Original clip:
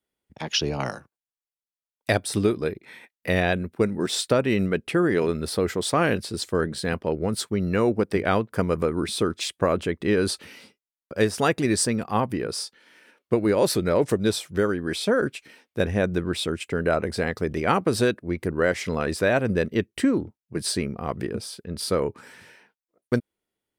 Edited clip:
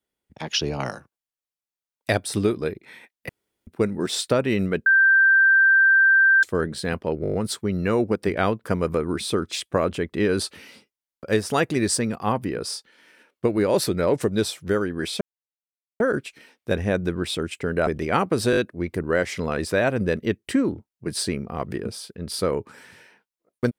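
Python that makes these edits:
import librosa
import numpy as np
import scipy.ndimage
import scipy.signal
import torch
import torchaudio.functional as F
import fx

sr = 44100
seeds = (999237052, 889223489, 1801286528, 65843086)

y = fx.edit(x, sr, fx.room_tone_fill(start_s=3.29, length_s=0.38),
    fx.bleep(start_s=4.86, length_s=1.57, hz=1570.0, db=-12.5),
    fx.stutter(start_s=7.22, slice_s=0.02, count=7),
    fx.insert_silence(at_s=15.09, length_s=0.79),
    fx.cut(start_s=16.96, length_s=0.46),
    fx.stutter(start_s=18.06, slice_s=0.02, count=4), tone=tone)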